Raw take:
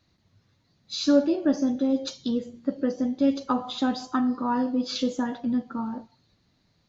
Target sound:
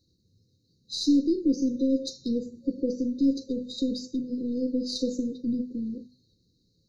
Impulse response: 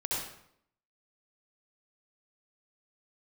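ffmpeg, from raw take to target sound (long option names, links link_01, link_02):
-af "bandreject=frequency=50:width_type=h:width=6,bandreject=frequency=100:width_type=h:width=6,bandreject=frequency=150:width_type=h:width=6,bandreject=frequency=200:width_type=h:width=6,bandreject=frequency=250:width_type=h:width=6,aeval=exprs='0.335*(cos(1*acos(clip(val(0)/0.335,-1,1)))-cos(1*PI/2))+0.00473*(cos(3*acos(clip(val(0)/0.335,-1,1)))-cos(3*PI/2))+0.00473*(cos(4*acos(clip(val(0)/0.335,-1,1)))-cos(4*PI/2))+0.00668*(cos(8*acos(clip(val(0)/0.335,-1,1)))-cos(8*PI/2))':channel_layout=same,afftfilt=real='re*(1-between(b*sr/4096,540,3700))':imag='im*(1-between(b*sr/4096,540,3700))':win_size=4096:overlap=0.75"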